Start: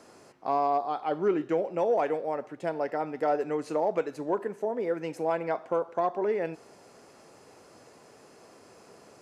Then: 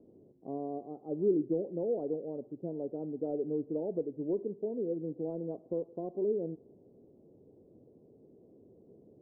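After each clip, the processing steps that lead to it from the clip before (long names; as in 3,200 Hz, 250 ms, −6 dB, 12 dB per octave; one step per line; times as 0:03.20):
inverse Chebyshev low-pass filter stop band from 2,500 Hz, stop band 80 dB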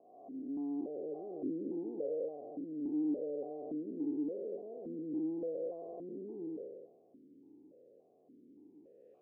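spectrum smeared in time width 578 ms
formant filter that steps through the vowels 3.5 Hz
level +10 dB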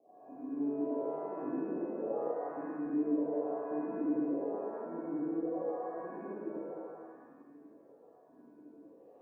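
reverb with rising layers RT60 1.5 s, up +7 semitones, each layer −8 dB, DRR −7 dB
level −6 dB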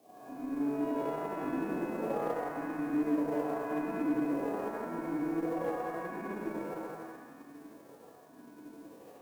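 spectral envelope flattened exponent 0.6
in parallel at −2 dB: downward compressor, threshold −43 dBFS, peak gain reduction 15 dB
on the sum: harmonic generator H 8 −32 dB, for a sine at −20.5 dBFS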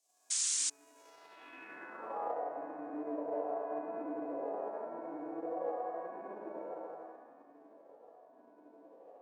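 sound drawn into the spectrogram noise, 0:00.30–0:00.70, 840–9,800 Hz −30 dBFS
high-pass filter 190 Hz 6 dB per octave
band-pass filter sweep 7,100 Hz → 630 Hz, 0:00.97–0:02.44
level +2 dB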